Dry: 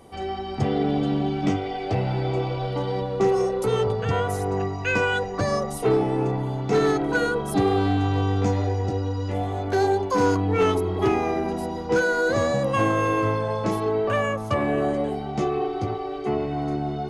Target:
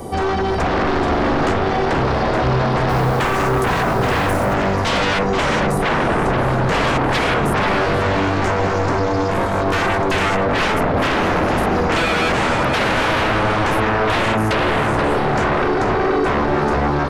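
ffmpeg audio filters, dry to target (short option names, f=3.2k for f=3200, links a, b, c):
-filter_complex "[0:a]equalizer=f=2.7k:w=0.84:g=-9,acrossover=split=370|1300|3000[a][b][c][d];[a]acompressor=threshold=-27dB:ratio=4[e];[b]acompressor=threshold=-37dB:ratio=4[f];[c]acompressor=threshold=-36dB:ratio=4[g];[d]acompressor=threshold=-56dB:ratio=4[h];[e][f][g][h]amix=inputs=4:normalize=0,aeval=exprs='0.168*sin(PI/2*6.31*val(0)/0.168)':c=same,asettb=1/sr,asplit=3[i][j][k];[i]atrim=end=2.894[l];[j]atrim=start=2.89:end=4.54,asetpts=PTS-STARTPTS,afade=t=in:d=0.004:c=qsin,afade=t=out:st=1.646:d=0.004:c=qsin,acrusher=bits=5:mode=log:mix=0:aa=0.000001[m];[k]atrim=start=4.536[n];[l][m]acrossfade=d=0.004:c1=hsin:c2=qsin[o];[o][n]acrossfade=d=0.004:c1=qsin:c2=hsin,asplit=2[p][q];[q]adelay=481,lowpass=f=3.5k:p=1,volume=-5.5dB,asplit=2[r][s];[s]adelay=481,lowpass=f=3.5k:p=1,volume=0.54,asplit=2[t][u];[u]adelay=481,lowpass=f=3.5k:p=1,volume=0.54,asplit=2[v][w];[w]adelay=481,lowpass=f=3.5k:p=1,volume=0.54,asplit=2[x][y];[y]adelay=481,lowpass=f=3.5k:p=1,volume=0.54,asplit=2[z][aa];[aa]adelay=481,lowpass=f=3.5k:p=1,volume=0.54,asplit=2[ab][ac];[ac]adelay=481,lowpass=f=3.5k:p=1,volume=0.54[ad];[p][r][t][v][x][z][ab][ad]amix=inputs=8:normalize=0"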